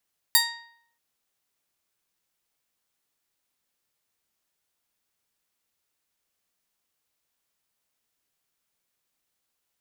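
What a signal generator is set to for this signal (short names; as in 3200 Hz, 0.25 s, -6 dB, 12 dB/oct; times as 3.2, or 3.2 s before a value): plucked string A#5, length 0.63 s, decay 0.67 s, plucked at 0.32, bright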